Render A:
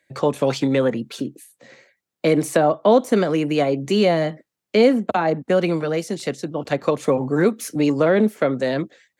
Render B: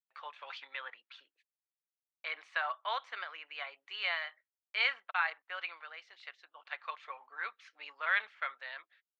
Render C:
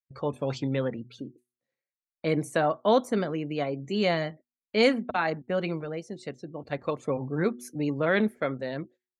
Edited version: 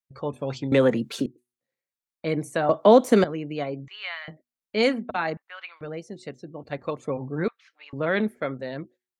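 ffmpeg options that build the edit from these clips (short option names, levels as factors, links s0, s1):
-filter_complex "[0:a]asplit=2[s0][s1];[1:a]asplit=3[s2][s3][s4];[2:a]asplit=6[s5][s6][s7][s8][s9][s10];[s5]atrim=end=0.722[s11];[s0]atrim=start=0.718:end=1.262[s12];[s6]atrim=start=1.258:end=2.692[s13];[s1]atrim=start=2.688:end=3.242[s14];[s7]atrim=start=3.238:end=3.882[s15];[s2]atrim=start=3.878:end=4.282[s16];[s8]atrim=start=4.278:end=5.372[s17];[s3]atrim=start=5.368:end=5.812[s18];[s9]atrim=start=5.808:end=7.482[s19];[s4]atrim=start=7.478:end=7.932[s20];[s10]atrim=start=7.928[s21];[s11][s12]acrossfade=d=0.004:c1=hsin:c2=hsin[s22];[s22][s13]acrossfade=d=0.004:c1=hsin:c2=hsin[s23];[s23][s14]acrossfade=d=0.004:c1=hsin:c2=hsin[s24];[s24][s15]acrossfade=d=0.004:c1=hsin:c2=hsin[s25];[s25][s16]acrossfade=d=0.004:c1=hsin:c2=hsin[s26];[s26][s17]acrossfade=d=0.004:c1=hsin:c2=hsin[s27];[s27][s18]acrossfade=d=0.004:c1=hsin:c2=hsin[s28];[s28][s19]acrossfade=d=0.004:c1=hsin:c2=hsin[s29];[s29][s20]acrossfade=d=0.004:c1=hsin:c2=hsin[s30];[s30][s21]acrossfade=d=0.004:c1=hsin:c2=hsin"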